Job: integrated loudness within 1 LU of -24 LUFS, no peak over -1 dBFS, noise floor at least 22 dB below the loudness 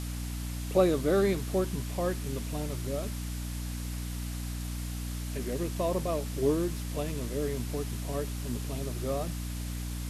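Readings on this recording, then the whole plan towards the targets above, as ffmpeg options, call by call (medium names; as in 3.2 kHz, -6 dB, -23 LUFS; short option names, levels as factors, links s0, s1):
hum 60 Hz; highest harmonic 300 Hz; hum level -33 dBFS; noise floor -36 dBFS; noise floor target -55 dBFS; loudness -32.5 LUFS; peak level -11.5 dBFS; loudness target -24.0 LUFS
-> -af "bandreject=f=60:t=h:w=6,bandreject=f=120:t=h:w=6,bandreject=f=180:t=h:w=6,bandreject=f=240:t=h:w=6,bandreject=f=300:t=h:w=6"
-af "afftdn=nr=19:nf=-36"
-af "volume=2.66"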